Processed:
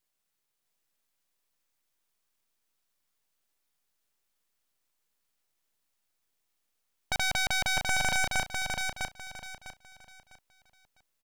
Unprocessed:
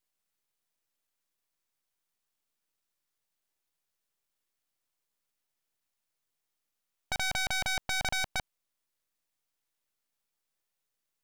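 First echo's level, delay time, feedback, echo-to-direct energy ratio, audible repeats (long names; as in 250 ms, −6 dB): −4.0 dB, 652 ms, 28%, −3.5 dB, 3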